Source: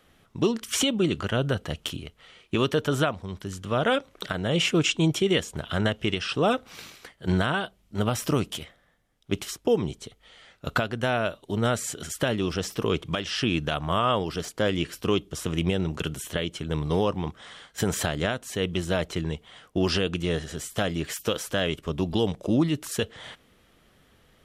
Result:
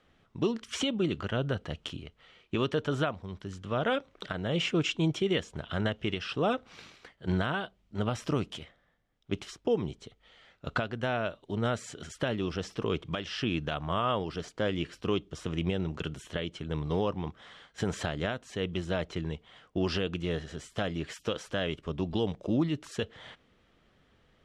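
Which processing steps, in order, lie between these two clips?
high-frequency loss of the air 94 metres
level −5 dB

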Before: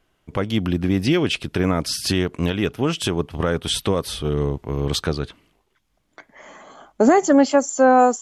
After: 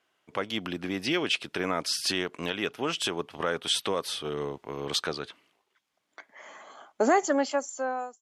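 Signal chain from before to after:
fade-out on the ending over 1.14 s
meter weighting curve A
level −4 dB

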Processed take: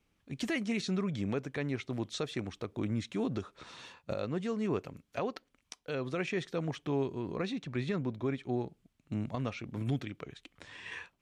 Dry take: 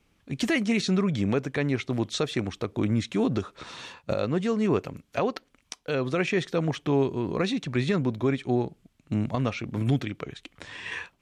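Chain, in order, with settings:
0:07.35–0:08.54: high-shelf EQ 5,700 Hz −6.5 dB
level −8.5 dB

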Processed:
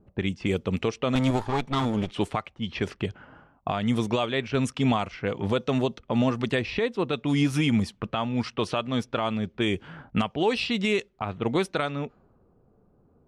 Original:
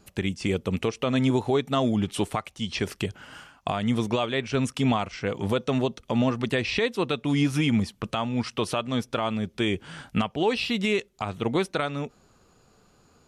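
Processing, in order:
0:01.15–0:02.11: lower of the sound and its delayed copy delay 0.89 ms
low-pass that shuts in the quiet parts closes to 570 Hz, open at −20.5 dBFS
0:06.59–0:07.13: high-shelf EQ 2,100 Hz −8 dB

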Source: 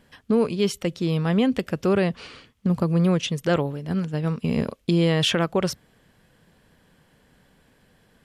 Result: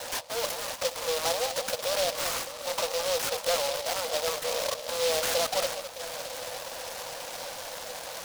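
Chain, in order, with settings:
reverb reduction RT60 0.54 s
noise gate with hold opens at −55 dBFS
parametric band 660 Hz +6.5 dB 2.3 octaves
brickwall limiter −16.5 dBFS, peak gain reduction 10 dB
mid-hump overdrive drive 33 dB, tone 2,100 Hz, clips at −20 dBFS
decimation without filtering 9×
linear-phase brick-wall band-pass 470–5,100 Hz
delay that swaps between a low-pass and a high-pass 205 ms, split 1,200 Hz, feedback 79%, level −10 dB
short delay modulated by noise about 3,900 Hz, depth 0.14 ms

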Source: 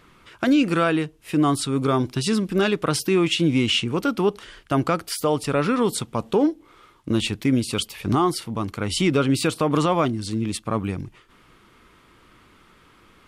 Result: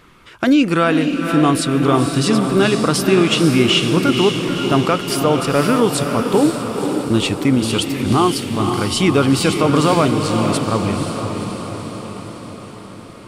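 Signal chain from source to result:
feedback delay with all-pass diffusion 502 ms, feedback 62%, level −5.5 dB
level +5 dB

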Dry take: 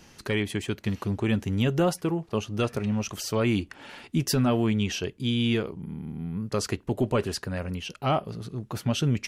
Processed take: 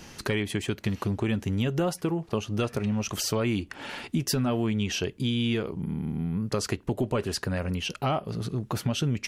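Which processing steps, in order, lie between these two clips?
downward compressor 3 to 1, threshold −33 dBFS, peak gain reduction 10 dB
level +6.5 dB

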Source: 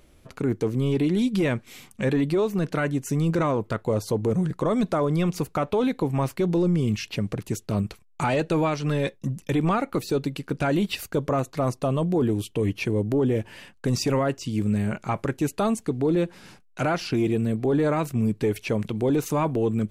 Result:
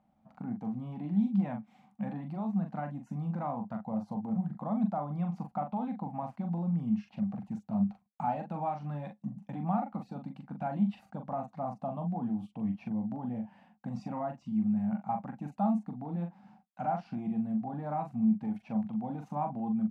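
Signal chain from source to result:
pair of resonant band-passes 400 Hz, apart 1.9 octaves
double-tracking delay 41 ms −6 dB

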